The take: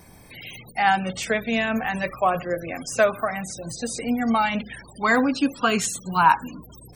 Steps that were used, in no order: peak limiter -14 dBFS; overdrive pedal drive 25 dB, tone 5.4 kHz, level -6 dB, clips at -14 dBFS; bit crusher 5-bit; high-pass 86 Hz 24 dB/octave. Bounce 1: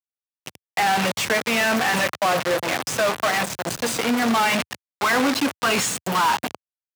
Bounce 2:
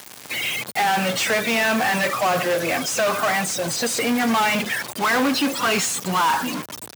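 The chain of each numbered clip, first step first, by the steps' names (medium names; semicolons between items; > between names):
peak limiter > bit crusher > overdrive pedal > high-pass; peak limiter > overdrive pedal > bit crusher > high-pass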